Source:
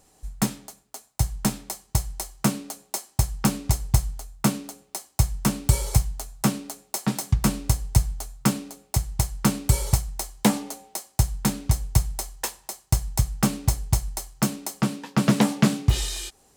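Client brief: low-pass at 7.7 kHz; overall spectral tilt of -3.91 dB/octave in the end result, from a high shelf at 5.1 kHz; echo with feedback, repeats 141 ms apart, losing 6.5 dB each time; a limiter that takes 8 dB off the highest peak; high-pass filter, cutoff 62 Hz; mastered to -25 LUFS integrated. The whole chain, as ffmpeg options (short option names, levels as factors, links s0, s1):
-af "highpass=62,lowpass=7700,highshelf=f=5100:g=9,alimiter=limit=0.282:level=0:latency=1,aecho=1:1:141|282|423|564|705|846:0.473|0.222|0.105|0.0491|0.0231|0.0109,volume=1.26"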